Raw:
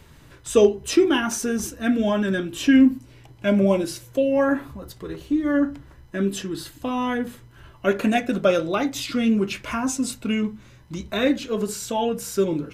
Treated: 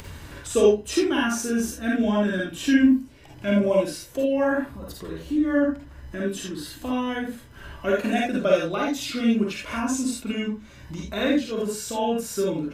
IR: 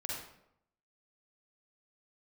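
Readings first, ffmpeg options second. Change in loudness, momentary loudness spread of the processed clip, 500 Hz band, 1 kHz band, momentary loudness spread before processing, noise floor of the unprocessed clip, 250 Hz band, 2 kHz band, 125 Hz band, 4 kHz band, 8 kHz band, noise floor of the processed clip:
−1.5 dB, 16 LU, −1.5 dB, −2.0 dB, 13 LU, −49 dBFS, −2.0 dB, −0.5 dB, −3.0 dB, −1.5 dB, −1.5 dB, −45 dBFS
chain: -filter_complex "[0:a]acompressor=mode=upward:threshold=-27dB:ratio=2.5[link_01];[1:a]atrim=start_sample=2205,atrim=end_sample=3969[link_02];[link_01][link_02]afir=irnorm=-1:irlink=0,volume=-1.5dB"

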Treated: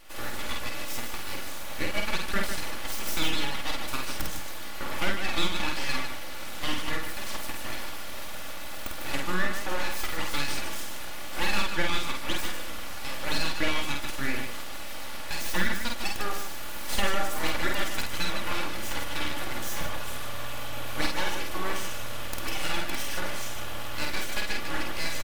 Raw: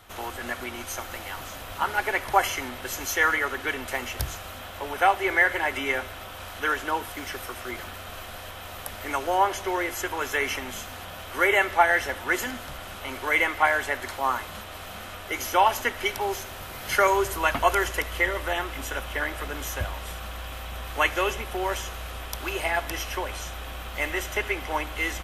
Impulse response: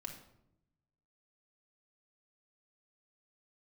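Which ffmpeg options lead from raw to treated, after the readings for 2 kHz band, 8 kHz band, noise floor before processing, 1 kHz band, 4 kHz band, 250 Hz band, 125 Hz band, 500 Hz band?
−6.0 dB, −0.5 dB, −40 dBFS, −9.0 dB, +2.5 dB, 0.0 dB, −1.0 dB, −8.5 dB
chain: -af "aeval=exprs='abs(val(0))':channel_layout=same,acompressor=threshold=-28dB:ratio=2,aecho=1:1:3.5:0.44,aecho=1:1:49.56|151.6:0.708|0.447"

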